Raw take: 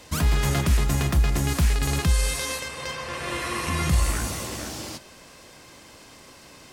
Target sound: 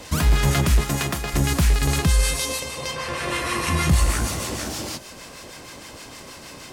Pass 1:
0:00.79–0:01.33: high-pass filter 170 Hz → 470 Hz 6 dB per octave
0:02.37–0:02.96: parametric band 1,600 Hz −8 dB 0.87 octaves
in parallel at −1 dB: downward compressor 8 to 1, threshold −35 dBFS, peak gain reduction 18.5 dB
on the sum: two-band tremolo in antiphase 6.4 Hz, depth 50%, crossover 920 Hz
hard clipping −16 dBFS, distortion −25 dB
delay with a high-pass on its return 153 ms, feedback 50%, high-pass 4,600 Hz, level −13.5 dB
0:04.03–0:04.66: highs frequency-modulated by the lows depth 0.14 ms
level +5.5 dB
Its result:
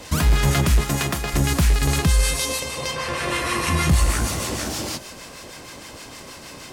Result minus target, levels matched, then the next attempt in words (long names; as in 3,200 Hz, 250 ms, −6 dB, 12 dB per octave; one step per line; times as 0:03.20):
downward compressor: peak gain reduction −9.5 dB
0:00.79–0:01.33: high-pass filter 170 Hz → 470 Hz 6 dB per octave
0:02.37–0:02.96: parametric band 1,600 Hz −8 dB 0.87 octaves
in parallel at −1 dB: downward compressor 8 to 1, threshold −46 dBFS, peak gain reduction 28 dB
on the sum: two-band tremolo in antiphase 6.4 Hz, depth 50%, crossover 920 Hz
hard clipping −16 dBFS, distortion −28 dB
delay with a high-pass on its return 153 ms, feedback 50%, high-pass 4,600 Hz, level −13.5 dB
0:04.03–0:04.66: highs frequency-modulated by the lows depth 0.14 ms
level +5.5 dB